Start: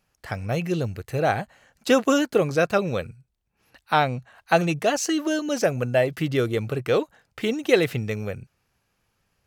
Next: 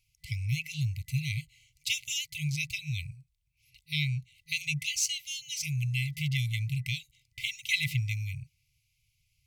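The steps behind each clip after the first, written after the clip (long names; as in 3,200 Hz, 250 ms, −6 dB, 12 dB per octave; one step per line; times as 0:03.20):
brick-wall band-stop 160–2,000 Hz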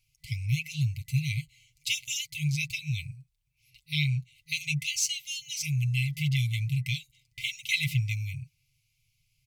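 comb filter 7.2 ms, depth 54%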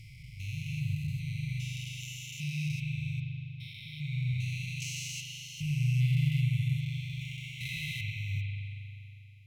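spectrum averaged block by block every 400 ms
spring reverb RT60 2.8 s, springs 40 ms, chirp 65 ms, DRR −1 dB
level −4.5 dB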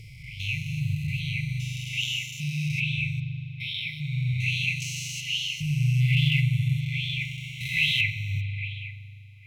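auto-filter bell 1.2 Hz 440–3,400 Hz +16 dB
level +4.5 dB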